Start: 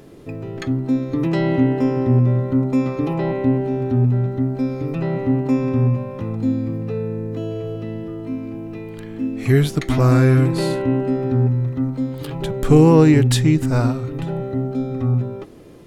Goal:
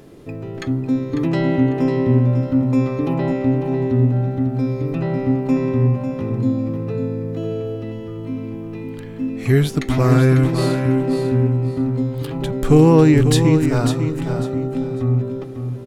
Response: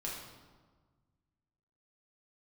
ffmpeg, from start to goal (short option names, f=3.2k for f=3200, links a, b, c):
-af "aecho=1:1:548|1096|1644:0.398|0.0955|0.0229"